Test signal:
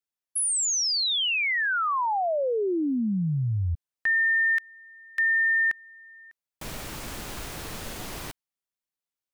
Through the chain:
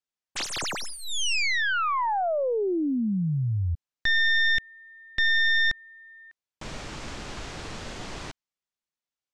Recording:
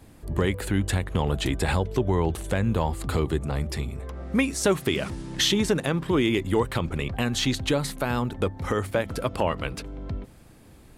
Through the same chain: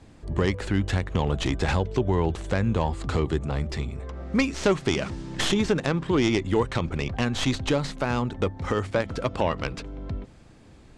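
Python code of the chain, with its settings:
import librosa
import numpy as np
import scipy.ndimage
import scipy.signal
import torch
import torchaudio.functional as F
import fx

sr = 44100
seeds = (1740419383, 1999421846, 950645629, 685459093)

y = fx.tracing_dist(x, sr, depth_ms=0.23)
y = scipy.signal.sosfilt(scipy.signal.butter(4, 7600.0, 'lowpass', fs=sr, output='sos'), y)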